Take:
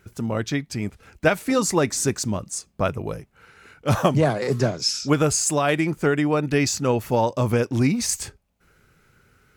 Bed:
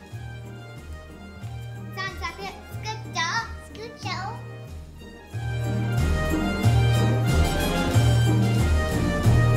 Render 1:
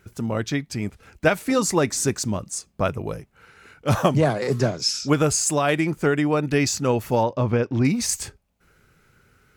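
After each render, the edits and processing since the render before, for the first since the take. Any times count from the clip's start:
0:07.23–0:07.85: high-frequency loss of the air 190 metres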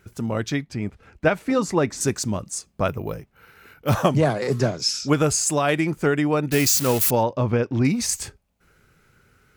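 0:00.64–0:02.01: low-pass filter 2,400 Hz 6 dB per octave
0:02.88–0:03.94: bad sample-rate conversion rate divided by 3×, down filtered, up hold
0:06.52–0:07.11: spike at every zero crossing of −15 dBFS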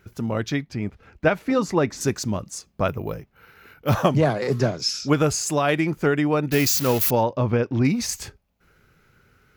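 parametric band 8,600 Hz −9 dB 0.54 octaves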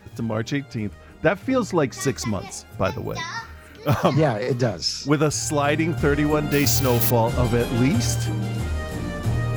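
mix in bed −5 dB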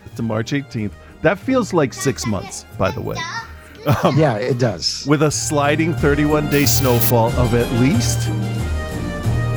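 level +4.5 dB
brickwall limiter −1 dBFS, peak gain reduction 1.5 dB

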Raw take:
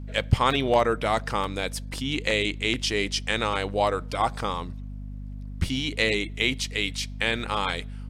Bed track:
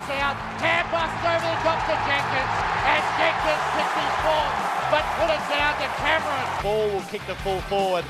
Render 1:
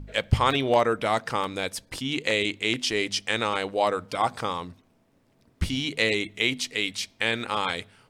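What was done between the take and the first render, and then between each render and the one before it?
hum removal 50 Hz, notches 5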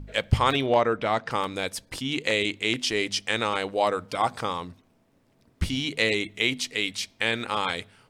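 0:00.66–0:01.31: high-frequency loss of the air 100 metres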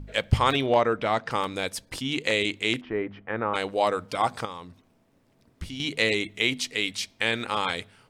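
0:02.81–0:03.54: low-pass filter 1,600 Hz 24 dB per octave
0:04.45–0:05.80: downward compressor 1.5 to 1, threshold −48 dBFS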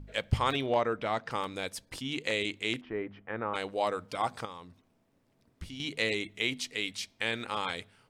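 level −6.5 dB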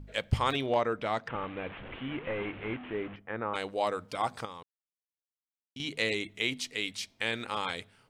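0:01.28–0:03.16: linear delta modulator 16 kbit/s, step −38 dBFS
0:04.63–0:05.76: silence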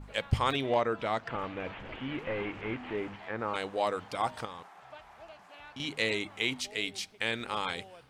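mix in bed track −28.5 dB

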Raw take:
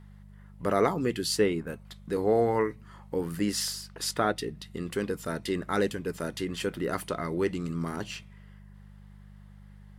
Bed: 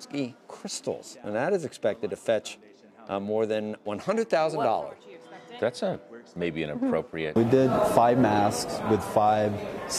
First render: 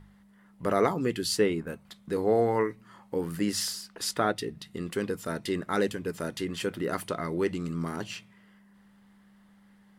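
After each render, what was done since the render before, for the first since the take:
hum removal 50 Hz, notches 3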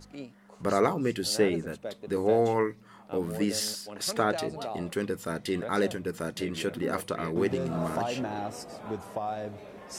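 mix in bed −11.5 dB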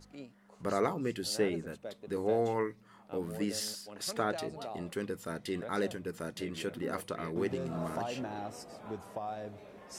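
level −6 dB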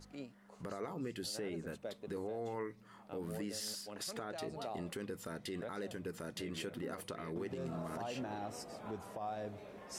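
downward compressor 5 to 1, threshold −36 dBFS, peak gain reduction 10.5 dB
brickwall limiter −32 dBFS, peak gain reduction 8 dB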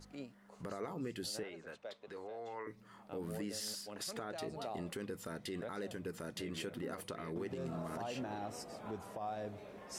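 0:01.43–0:02.67: three-way crossover with the lows and the highs turned down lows −14 dB, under 500 Hz, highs −16 dB, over 6,300 Hz

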